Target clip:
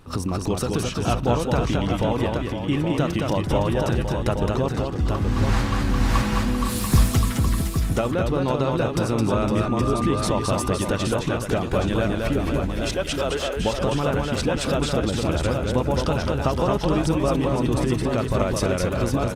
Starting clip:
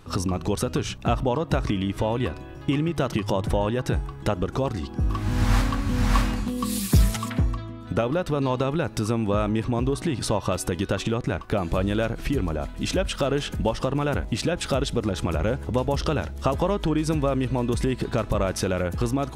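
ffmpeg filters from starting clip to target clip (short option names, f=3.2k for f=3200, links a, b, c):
-filter_complex "[0:a]asettb=1/sr,asplit=3[a][b][c];[a]atrim=end=5.234[d];[b]atrim=start=5.23:end=5.8,asetpts=PTS-STARTPTS,afade=t=in:d=0.004:c=qsin,afade=t=out:st=0.566:d=0.004:c=qsin,highshelf=f=12k:g=-9.5[e];[c]atrim=start=5.796[f];[d][e]acrossfade=d=0.004:c1=hsin:c2=qsin[g];[g][f]acrossfade=d=0.004:c1=qsin:c2=hsin,asettb=1/sr,asplit=3[h][i][j];[h]atrim=end=9.624[k];[i]atrim=start=9.62:end=10.24,asetpts=PTS-STARTPTS,afade=t=in:d=0.004:c=qsin,afade=t=out:st=0.616:d=0.004:c=qsin,aeval=exprs='val(0)+0.0282*sin(2*PI*1200*n/s)':c=same[l];[j]atrim=start=10.236[m];[k][l]acrossfade=d=0.004:c1=hsin:c2=qsin[n];[n][m]acrossfade=d=0.004:c1=qsin:c2=hsin,asettb=1/sr,asplit=3[o][p][q];[o]atrim=end=12.814[r];[p]atrim=start=12.81:end=13.57,asetpts=PTS-STARTPTS,afade=t=in:d=0.004:c=qsin,afade=t=out:st=0.756:d=0.004:c=qsin,highpass=f=380:w=0.5412,highpass=f=380:w=1.3066[s];[q]atrim=start=13.566[t];[r][s]acrossfade=d=0.004:c1=hsin:c2=qsin[u];[u][t]acrossfade=d=0.004:c1=qsin:c2=hsin,aecho=1:1:216|512|822:0.668|0.398|0.501" -ar 48000 -c:a libopus -b:a 32k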